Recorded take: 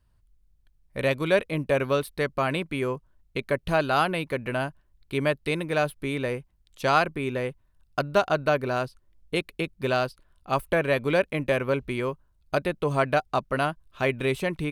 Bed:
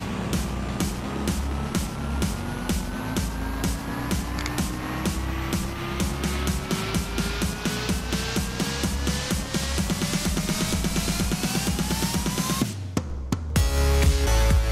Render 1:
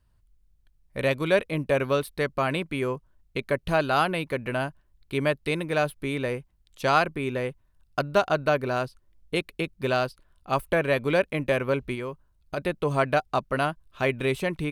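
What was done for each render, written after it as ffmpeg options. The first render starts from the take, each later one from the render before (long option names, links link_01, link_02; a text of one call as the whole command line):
ffmpeg -i in.wav -filter_complex "[0:a]asplit=3[link_01][link_02][link_03];[link_01]afade=type=out:start_time=11.94:duration=0.02[link_04];[link_02]acompressor=threshold=-32dB:ratio=2:attack=3.2:release=140:knee=1:detection=peak,afade=type=in:start_time=11.94:duration=0.02,afade=type=out:start_time=12.57:duration=0.02[link_05];[link_03]afade=type=in:start_time=12.57:duration=0.02[link_06];[link_04][link_05][link_06]amix=inputs=3:normalize=0" out.wav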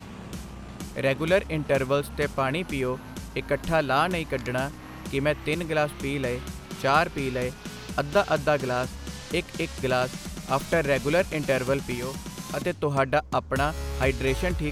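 ffmpeg -i in.wav -i bed.wav -filter_complex "[1:a]volume=-11.5dB[link_01];[0:a][link_01]amix=inputs=2:normalize=0" out.wav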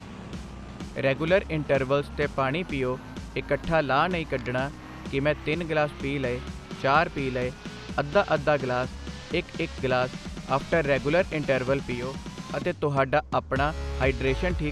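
ffmpeg -i in.wav -filter_complex "[0:a]lowpass=7900,acrossover=split=4900[link_01][link_02];[link_02]acompressor=threshold=-54dB:ratio=4:attack=1:release=60[link_03];[link_01][link_03]amix=inputs=2:normalize=0" out.wav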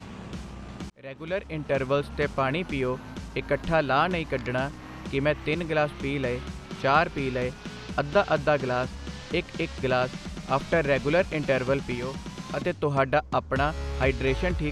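ffmpeg -i in.wav -filter_complex "[0:a]asplit=2[link_01][link_02];[link_01]atrim=end=0.9,asetpts=PTS-STARTPTS,afade=type=out:start_time=0.896:duration=0.004:curve=hsin[link_03];[link_02]atrim=start=0.9,asetpts=PTS-STARTPTS,afade=type=in:duration=1.12[link_04];[link_03][link_04]concat=n=2:v=0:a=1" out.wav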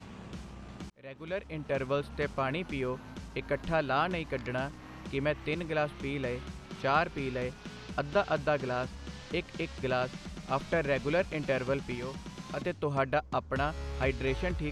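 ffmpeg -i in.wav -af "volume=-6dB" out.wav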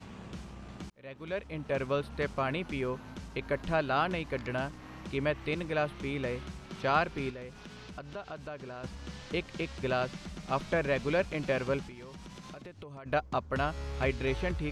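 ffmpeg -i in.wav -filter_complex "[0:a]asettb=1/sr,asplit=3[link_01][link_02][link_03];[link_01]atrim=end=7.304[link_04];[link_02]atrim=start=7.3:end=8.84,asetpts=PTS-STARTPTS,afade=type=in:duration=0.004:curve=qsin,afade=type=out:start_time=1.536:duration=0.004:curve=qsin,acompressor=threshold=-44dB:ratio=2.5:attack=3.2:release=140:knee=1:detection=peak[link_05];[link_03]atrim=start=8.836[link_06];[link_04][link_05]acrossfade=duration=0.004:curve1=hsin:curve2=qsin[link_07];[link_07][link_06]acrossfade=duration=0.004:curve1=qsin:curve2=hsin,asplit=3[link_08][link_09][link_10];[link_08]afade=type=out:start_time=11.86:duration=0.02[link_11];[link_09]acompressor=threshold=-42dB:ratio=12:attack=3.2:release=140:knee=1:detection=peak,afade=type=in:start_time=11.86:duration=0.02,afade=type=out:start_time=13.05:duration=0.02[link_12];[link_10]afade=type=in:start_time=13.05:duration=0.02[link_13];[link_11][link_12][link_13]amix=inputs=3:normalize=0" out.wav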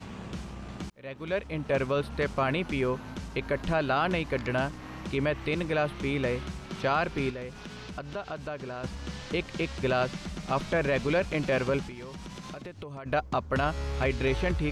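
ffmpeg -i in.wav -af "acontrast=36,alimiter=limit=-17.5dB:level=0:latency=1:release=10" out.wav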